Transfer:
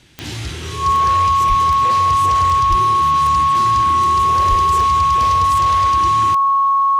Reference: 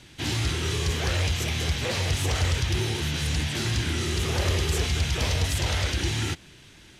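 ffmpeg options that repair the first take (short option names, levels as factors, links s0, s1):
-filter_complex "[0:a]adeclick=t=4,bandreject=f=1100:w=30,asplit=3[s0][s1][s2];[s0]afade=t=out:st=1.48:d=0.02[s3];[s1]highpass=f=140:w=0.5412,highpass=f=140:w=1.3066,afade=t=in:st=1.48:d=0.02,afade=t=out:st=1.6:d=0.02[s4];[s2]afade=t=in:st=1.6:d=0.02[s5];[s3][s4][s5]amix=inputs=3:normalize=0,asplit=3[s6][s7][s8];[s6]afade=t=out:st=2.69:d=0.02[s9];[s7]highpass=f=140:w=0.5412,highpass=f=140:w=1.3066,afade=t=in:st=2.69:d=0.02,afade=t=out:st=2.81:d=0.02[s10];[s8]afade=t=in:st=2.81:d=0.02[s11];[s9][s10][s11]amix=inputs=3:normalize=0,asplit=3[s12][s13][s14];[s12]afade=t=out:st=4.49:d=0.02[s15];[s13]highpass=f=140:w=0.5412,highpass=f=140:w=1.3066,afade=t=in:st=4.49:d=0.02,afade=t=out:st=4.61:d=0.02[s16];[s14]afade=t=in:st=4.61:d=0.02[s17];[s15][s16][s17]amix=inputs=3:normalize=0"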